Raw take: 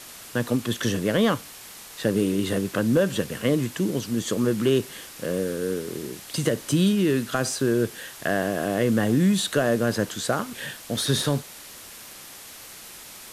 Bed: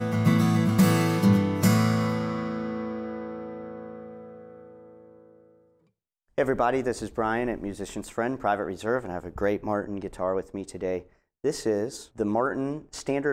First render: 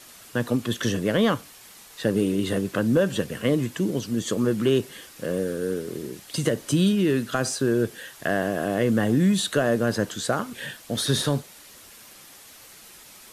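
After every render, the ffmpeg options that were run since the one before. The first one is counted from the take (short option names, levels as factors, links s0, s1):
-af "afftdn=nr=6:nf=-43"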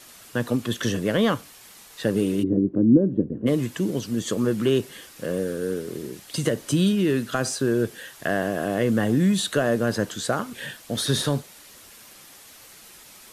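-filter_complex "[0:a]asplit=3[s0][s1][s2];[s0]afade=t=out:st=2.42:d=0.02[s3];[s1]lowpass=f=310:t=q:w=3.1,afade=t=in:st=2.42:d=0.02,afade=t=out:st=3.46:d=0.02[s4];[s2]afade=t=in:st=3.46:d=0.02[s5];[s3][s4][s5]amix=inputs=3:normalize=0"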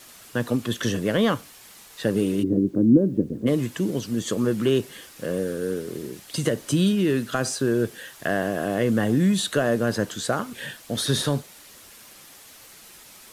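-af "acrusher=bits=9:mix=0:aa=0.000001"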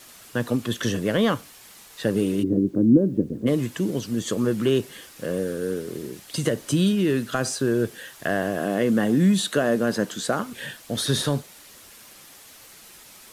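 -filter_complex "[0:a]asettb=1/sr,asplit=3[s0][s1][s2];[s0]atrim=end=8.604[s3];[s1]atrim=start=8.6:end=10.43,asetpts=PTS-STARTPTS,afade=t=in:d=0.004:c=qsin,afade=t=out:st=1.826:d=0.004:c=qsin,lowshelf=f=130:t=q:w=1.5:g=-7.5[s4];[s2]atrim=start=10.426[s5];[s3][s4]acrossfade=d=0.004:c1=hsin:c2=qsin[s6];[s6][s5]acrossfade=d=0.004:c1=qsin:c2=hsin"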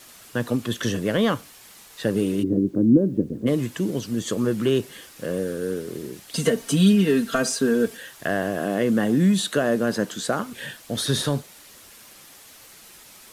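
-filter_complex "[0:a]asettb=1/sr,asplit=3[s0][s1][s2];[s0]atrim=end=6.354[s3];[s1]atrim=start=6.35:end=7.97,asetpts=PTS-STARTPTS,afade=t=in:d=0.004:c=qsin,afade=t=out:st=1.616:d=0.004:c=qsin,aecho=1:1:4.4:0.94,atrim=end_sample=71442[s4];[s2]atrim=start=7.966[s5];[s3][s4]acrossfade=d=0.004:c1=hsin:c2=qsin[s6];[s6][s5]acrossfade=d=0.004:c1=qsin:c2=hsin"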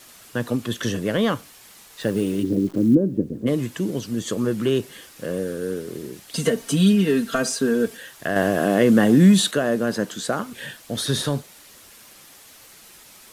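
-filter_complex "[0:a]asettb=1/sr,asplit=3[s0][s1][s2];[s0]atrim=end=2.014[s3];[s1]atrim=start=2.01:end=2.95,asetpts=PTS-STARTPTS,afade=t=in:d=0.004:c=qsin,afade=t=out:st=0.936:d=0.004:c=qsin,acrusher=bits=8:dc=4:mix=0:aa=0.000001[s4];[s2]atrim=start=2.946[s5];[s3][s4]acrossfade=d=0.004:c1=hsin:c2=qsin[s6];[s6][s5]acrossfade=d=0.004:c1=qsin:c2=hsin,asplit=3[s7][s8][s9];[s7]atrim=end=8.362[s10];[s8]atrim=start=8.358:end=9.512,asetpts=PTS-STARTPTS,volume=1.88[s11];[s9]atrim=start=9.508[s12];[s10][s11]acrossfade=d=0.004:c1=hsin:c2=hsin[s13];[s13][s12]acrossfade=d=0.004:c1=hsin:c2=hsin"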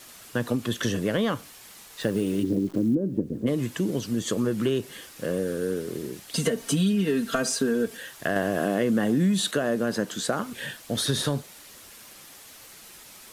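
-af "acompressor=threshold=0.0891:ratio=4"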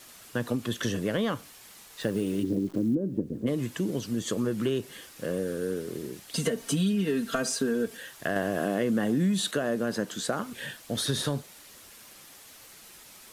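-af "volume=0.708"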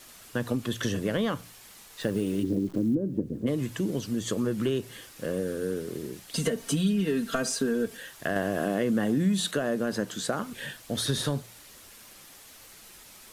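-af "lowshelf=f=62:g=8.5,bandreject=f=58.09:t=h:w=4,bandreject=f=116.18:t=h:w=4,bandreject=f=174.27:t=h:w=4"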